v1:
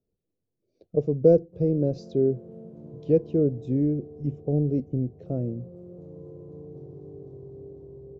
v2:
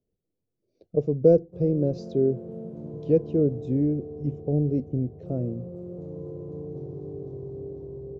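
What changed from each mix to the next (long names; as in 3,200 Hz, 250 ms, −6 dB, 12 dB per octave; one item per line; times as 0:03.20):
background +6.0 dB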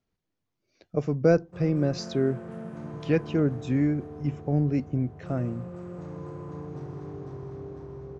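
master: remove drawn EQ curve 290 Hz 0 dB, 470 Hz +6 dB, 1,100 Hz −19 dB, 1,700 Hz −26 dB, 3,800 Hz −13 dB, 8,000 Hz −17 dB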